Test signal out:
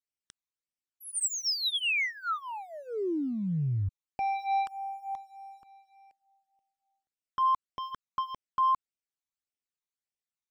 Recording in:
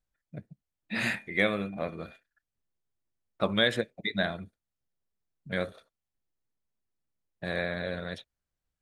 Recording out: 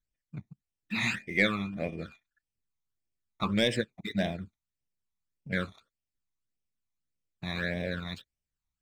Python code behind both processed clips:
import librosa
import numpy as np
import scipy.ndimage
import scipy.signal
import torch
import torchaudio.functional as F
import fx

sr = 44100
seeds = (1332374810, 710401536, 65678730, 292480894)

y = scipy.signal.sosfilt(scipy.signal.ellip(4, 1.0, 80, 8400.0, 'lowpass', fs=sr, output='sos'), x)
y = fx.high_shelf(y, sr, hz=6500.0, db=5.0)
y = fx.leveller(y, sr, passes=1)
y = fx.phaser_stages(y, sr, stages=12, low_hz=490.0, high_hz=1400.0, hz=1.7, feedback_pct=20)